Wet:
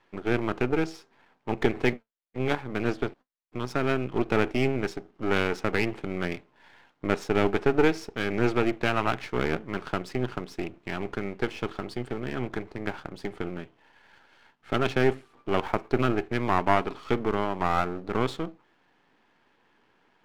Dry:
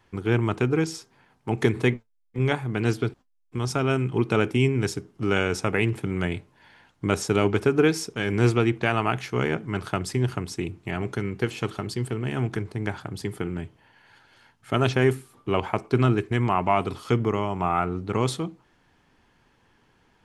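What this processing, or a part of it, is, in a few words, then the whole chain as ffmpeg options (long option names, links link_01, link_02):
crystal radio: -filter_complex "[0:a]highpass=240,lowpass=3400,aeval=exprs='if(lt(val(0),0),0.251*val(0),val(0))':channel_layout=same,asettb=1/sr,asplit=3[link_01][link_02][link_03];[link_01]atrim=end=15.624[link_04];[link_02]atrim=start=15.62:end=16.07,asetpts=PTS-STARTPTS,afade=type=in:duration=0.004:curve=qsin,afade=type=out:start_time=0.446:duration=0.004:curve=qsin,highshelf=frequency=10000:gain=5.5[link_05];[link_03]atrim=start=16.066[link_06];[link_04][link_05]acrossfade=duration=0.004:curve1=hsin:curve2=qsin[link_07];[link_07][link_06]acrossfade=duration=0.004:curve1=qsin:curve2=hsin,volume=2.5dB"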